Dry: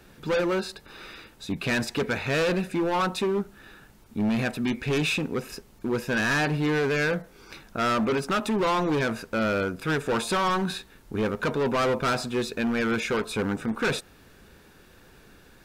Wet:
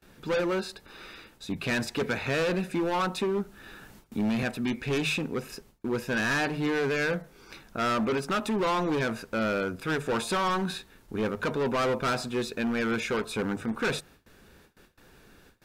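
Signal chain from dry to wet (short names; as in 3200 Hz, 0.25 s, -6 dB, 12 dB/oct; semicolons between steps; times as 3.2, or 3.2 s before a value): gate with hold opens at -43 dBFS; notches 50/100/150 Hz; 2.01–4.43 three-band squash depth 40%; gain -2.5 dB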